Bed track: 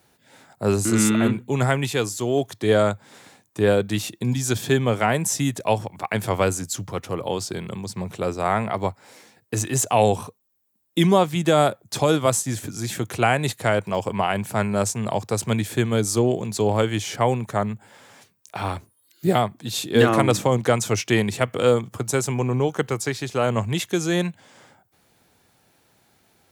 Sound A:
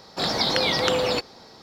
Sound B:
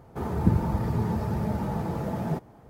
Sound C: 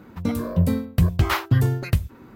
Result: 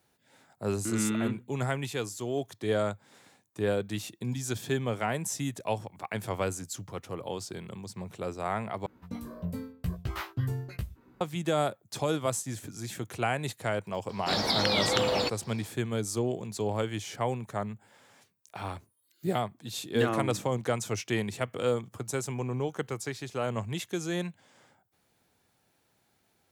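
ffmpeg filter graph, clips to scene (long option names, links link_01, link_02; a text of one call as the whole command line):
ffmpeg -i bed.wav -i cue0.wav -i cue1.wav -i cue2.wav -filter_complex "[0:a]volume=-10dB[link_01];[3:a]asplit=2[link_02][link_03];[link_03]adelay=16,volume=-4dB[link_04];[link_02][link_04]amix=inputs=2:normalize=0[link_05];[link_01]asplit=2[link_06][link_07];[link_06]atrim=end=8.864[link_08];[link_05]atrim=end=2.35,asetpts=PTS-STARTPTS,volume=-15.5dB[link_09];[link_07]atrim=start=11.206[link_10];[1:a]atrim=end=1.62,asetpts=PTS-STARTPTS,volume=-4.5dB,afade=type=in:duration=0.004:curve=hsin,afade=type=out:start_time=1.616:duration=0.004:curve=hsin,adelay=14090[link_11];[link_08][link_09]acrossfade=duration=0.004:curve1=hsin:curve2=hsin[link_12];[link_12][link_10]acrossfade=duration=0.004:curve1=hsin:curve2=hsin[link_13];[link_13][link_11]amix=inputs=2:normalize=0" out.wav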